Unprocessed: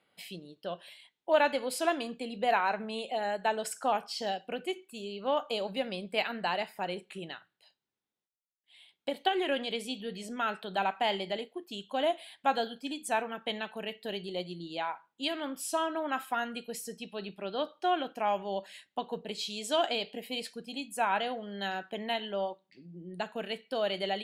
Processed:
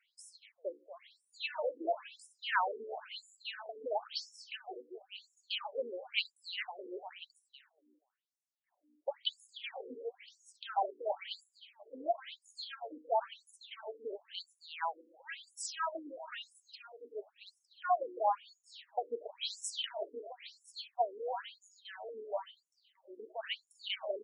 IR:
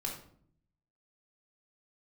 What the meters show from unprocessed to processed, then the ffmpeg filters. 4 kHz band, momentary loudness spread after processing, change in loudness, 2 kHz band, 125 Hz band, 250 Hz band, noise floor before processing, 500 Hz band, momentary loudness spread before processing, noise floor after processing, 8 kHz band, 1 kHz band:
-5.0 dB, 18 LU, -6.5 dB, -7.5 dB, under -35 dB, -17.0 dB, under -85 dBFS, -7.5 dB, 11 LU, -83 dBFS, -6.0 dB, -6.0 dB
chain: -af "equalizer=f=280:w=2.5:g=-11.5,aeval=exprs='val(0)+0.00126*(sin(2*PI*60*n/s)+sin(2*PI*2*60*n/s)/2+sin(2*PI*3*60*n/s)/3+sin(2*PI*4*60*n/s)/4+sin(2*PI*5*60*n/s)/5)':c=same,aecho=1:1:240|480|720:0.251|0.0728|0.0211,afftfilt=real='re*between(b*sr/1024,350*pow(7700/350,0.5+0.5*sin(2*PI*0.98*pts/sr))/1.41,350*pow(7700/350,0.5+0.5*sin(2*PI*0.98*pts/sr))*1.41)':imag='im*between(b*sr/1024,350*pow(7700/350,0.5+0.5*sin(2*PI*0.98*pts/sr))/1.41,350*pow(7700/350,0.5+0.5*sin(2*PI*0.98*pts/sr))*1.41)':win_size=1024:overlap=0.75,volume=1.19"

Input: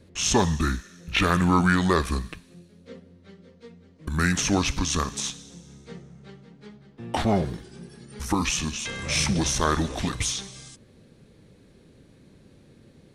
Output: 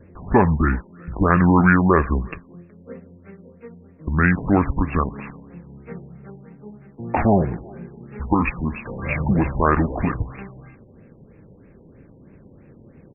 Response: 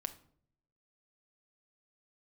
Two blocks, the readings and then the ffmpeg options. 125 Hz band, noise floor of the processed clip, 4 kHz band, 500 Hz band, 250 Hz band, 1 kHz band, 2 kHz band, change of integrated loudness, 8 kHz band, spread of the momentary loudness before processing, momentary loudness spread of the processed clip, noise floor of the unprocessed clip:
+6.0 dB, -49 dBFS, under -30 dB, +6.0 dB, +6.0 dB, +5.5 dB, +4.0 dB, +4.5 dB, under -40 dB, 23 LU, 23 LU, -55 dBFS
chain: -filter_complex "[0:a]asplit=2[s0][s1];[s1]adelay=370,highpass=300,lowpass=3400,asoftclip=type=hard:threshold=0.178,volume=0.0562[s2];[s0][s2]amix=inputs=2:normalize=0,afftfilt=real='re*lt(b*sr/1024,980*pow(2800/980,0.5+0.5*sin(2*PI*3.1*pts/sr)))':imag='im*lt(b*sr/1024,980*pow(2800/980,0.5+0.5*sin(2*PI*3.1*pts/sr)))':win_size=1024:overlap=0.75,volume=2"

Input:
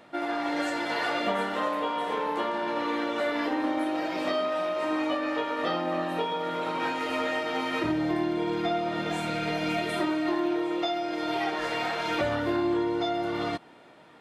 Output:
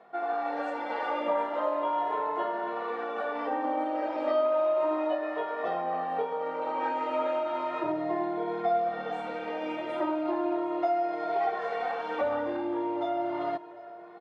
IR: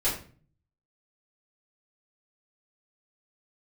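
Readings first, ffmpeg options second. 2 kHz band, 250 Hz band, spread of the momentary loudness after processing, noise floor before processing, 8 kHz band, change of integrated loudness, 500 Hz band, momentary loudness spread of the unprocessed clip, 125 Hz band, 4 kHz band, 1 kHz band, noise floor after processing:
-7.5 dB, -6.0 dB, 6 LU, -52 dBFS, under -20 dB, -1.5 dB, +0.5 dB, 3 LU, -14.0 dB, -13.5 dB, +0.5 dB, -44 dBFS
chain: -filter_complex "[0:a]bandpass=f=730:t=q:w=1.3:csg=0,aecho=1:1:755|1510|2265|3020:0.106|0.0551|0.0286|0.0149,asplit=2[s0][s1];[s1]adelay=2.3,afreqshift=0.35[s2];[s0][s2]amix=inputs=2:normalize=1,volume=1.78"

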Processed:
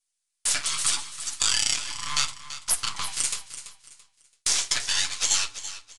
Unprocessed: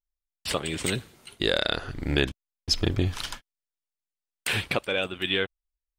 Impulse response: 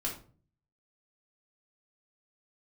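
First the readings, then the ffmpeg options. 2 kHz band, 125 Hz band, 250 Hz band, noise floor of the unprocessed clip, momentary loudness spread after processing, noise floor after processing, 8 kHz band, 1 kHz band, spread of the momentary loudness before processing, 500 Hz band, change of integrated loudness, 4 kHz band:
-2.5 dB, -18.0 dB, -20.0 dB, under -85 dBFS, 11 LU, -81 dBFS, +15.5 dB, +1.0 dB, 11 LU, -20.0 dB, +3.0 dB, +3.0 dB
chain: -filter_complex "[0:a]highpass=140,bandreject=f=1800:w=12,aecho=1:1:7:0.86,afreqshift=300,acompressor=threshold=0.00708:ratio=2,aeval=exprs='abs(val(0))':c=same,lowshelf=f=460:g=-10.5,flanger=delay=7.9:depth=7.1:regen=-46:speed=0.74:shape=sinusoidal,crystalizer=i=6.5:c=0,aecho=1:1:335|670|1005:0.224|0.0672|0.0201,asplit=2[s0][s1];[1:a]atrim=start_sample=2205[s2];[s1][s2]afir=irnorm=-1:irlink=0,volume=0.237[s3];[s0][s3]amix=inputs=2:normalize=0,aresample=22050,aresample=44100,volume=2.37"

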